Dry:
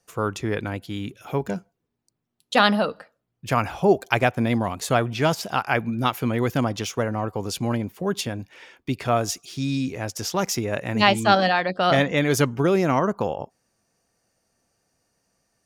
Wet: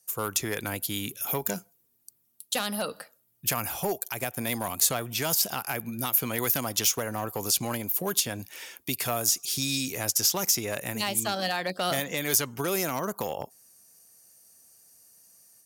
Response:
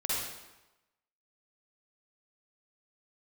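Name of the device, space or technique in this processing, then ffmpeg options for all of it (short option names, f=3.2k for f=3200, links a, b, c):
FM broadcast chain: -filter_complex "[0:a]highpass=f=73:p=1,dynaudnorm=f=130:g=3:m=8dB,acrossover=split=530|7400[a][b][c];[a]acompressor=threshold=-23dB:ratio=4[d];[b]acompressor=threshold=-20dB:ratio=4[e];[c]acompressor=threshold=-42dB:ratio=4[f];[d][e][f]amix=inputs=3:normalize=0,aemphasis=mode=production:type=50fm,alimiter=limit=-9.5dB:level=0:latency=1:release=100,asoftclip=type=hard:threshold=-13dB,lowpass=f=15k:w=0.5412,lowpass=f=15k:w=1.3066,aemphasis=mode=production:type=50fm,volume=-8.5dB"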